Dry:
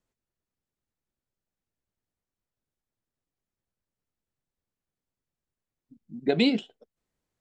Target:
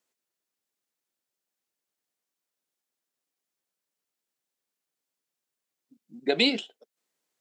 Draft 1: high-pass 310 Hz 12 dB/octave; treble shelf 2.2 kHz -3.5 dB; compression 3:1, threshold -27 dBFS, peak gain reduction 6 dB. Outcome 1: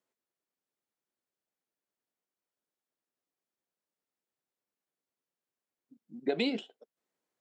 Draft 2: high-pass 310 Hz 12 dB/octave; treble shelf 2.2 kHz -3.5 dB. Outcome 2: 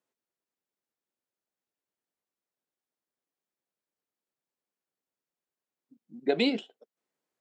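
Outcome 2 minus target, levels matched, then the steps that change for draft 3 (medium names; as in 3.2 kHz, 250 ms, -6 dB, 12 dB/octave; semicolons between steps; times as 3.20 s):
4 kHz band -5.0 dB
change: treble shelf 2.2 kHz +8 dB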